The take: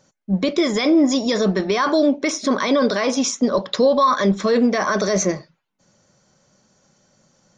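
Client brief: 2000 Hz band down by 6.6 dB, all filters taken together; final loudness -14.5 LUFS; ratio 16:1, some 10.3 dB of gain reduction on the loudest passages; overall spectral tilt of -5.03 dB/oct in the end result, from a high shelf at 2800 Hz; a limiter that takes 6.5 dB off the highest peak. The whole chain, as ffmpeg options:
-af "equalizer=f=2k:t=o:g=-5.5,highshelf=f=2.8k:g=-8,acompressor=threshold=-22dB:ratio=16,volume=14dB,alimiter=limit=-6dB:level=0:latency=1"

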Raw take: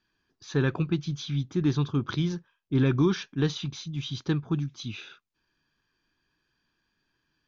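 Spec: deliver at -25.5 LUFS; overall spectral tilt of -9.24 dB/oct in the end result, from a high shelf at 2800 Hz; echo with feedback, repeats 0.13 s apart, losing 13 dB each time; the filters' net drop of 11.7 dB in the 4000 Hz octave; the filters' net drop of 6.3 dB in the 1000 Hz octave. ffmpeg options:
-af "equalizer=f=1k:t=o:g=-6,highshelf=f=2.8k:g=-8.5,equalizer=f=4k:t=o:g=-7.5,aecho=1:1:130|260|390:0.224|0.0493|0.0108,volume=3.5dB"

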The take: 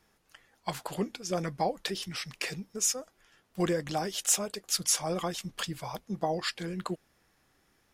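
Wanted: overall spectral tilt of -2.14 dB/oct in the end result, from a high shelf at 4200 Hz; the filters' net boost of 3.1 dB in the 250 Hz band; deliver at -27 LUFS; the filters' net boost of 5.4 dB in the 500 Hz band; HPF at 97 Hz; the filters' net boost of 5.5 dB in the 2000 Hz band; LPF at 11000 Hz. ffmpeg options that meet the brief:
-af "highpass=97,lowpass=11k,equalizer=f=250:t=o:g=3,equalizer=f=500:t=o:g=5.5,equalizer=f=2k:t=o:g=4.5,highshelf=f=4.2k:g=8.5"

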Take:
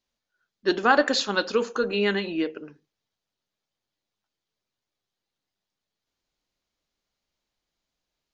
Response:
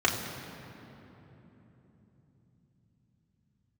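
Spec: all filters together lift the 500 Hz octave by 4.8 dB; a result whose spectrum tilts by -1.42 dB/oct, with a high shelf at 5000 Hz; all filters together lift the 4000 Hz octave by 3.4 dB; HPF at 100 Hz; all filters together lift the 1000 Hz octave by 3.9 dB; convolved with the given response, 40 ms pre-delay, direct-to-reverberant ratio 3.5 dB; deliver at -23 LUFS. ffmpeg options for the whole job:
-filter_complex "[0:a]highpass=100,equalizer=f=500:t=o:g=5,equalizer=f=1k:t=o:g=3.5,equalizer=f=4k:t=o:g=5.5,highshelf=f=5k:g=-4,asplit=2[a][b];[1:a]atrim=start_sample=2205,adelay=40[c];[b][c]afir=irnorm=-1:irlink=0,volume=-17dB[d];[a][d]amix=inputs=2:normalize=0,volume=-3.5dB"

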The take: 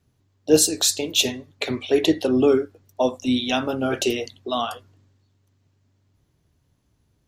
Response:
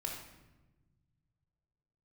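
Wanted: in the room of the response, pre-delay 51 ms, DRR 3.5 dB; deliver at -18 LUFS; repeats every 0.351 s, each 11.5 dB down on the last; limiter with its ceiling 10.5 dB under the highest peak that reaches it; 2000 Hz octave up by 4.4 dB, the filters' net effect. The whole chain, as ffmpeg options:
-filter_complex "[0:a]equalizer=f=2k:t=o:g=6.5,alimiter=limit=-13dB:level=0:latency=1,aecho=1:1:351|702|1053:0.266|0.0718|0.0194,asplit=2[a][b];[1:a]atrim=start_sample=2205,adelay=51[c];[b][c]afir=irnorm=-1:irlink=0,volume=-4dB[d];[a][d]amix=inputs=2:normalize=0,volume=4.5dB"

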